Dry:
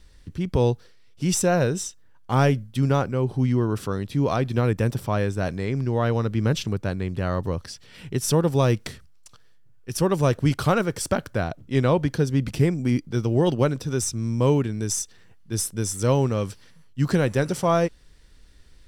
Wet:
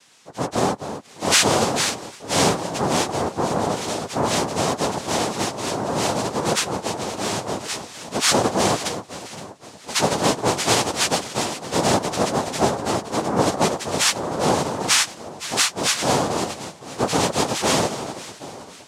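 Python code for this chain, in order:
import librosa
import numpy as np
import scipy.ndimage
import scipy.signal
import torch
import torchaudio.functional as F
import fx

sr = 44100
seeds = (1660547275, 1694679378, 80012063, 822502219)

y = fx.freq_snap(x, sr, grid_st=4)
y = fx.echo_alternate(y, sr, ms=258, hz=1000.0, feedback_pct=66, wet_db=-10.5)
y = fx.noise_vocoder(y, sr, seeds[0], bands=2)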